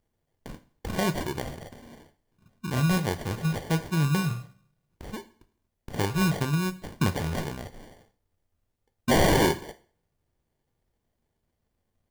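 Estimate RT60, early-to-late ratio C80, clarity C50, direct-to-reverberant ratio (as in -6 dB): 0.45 s, 21.0 dB, 16.5 dB, 10.0 dB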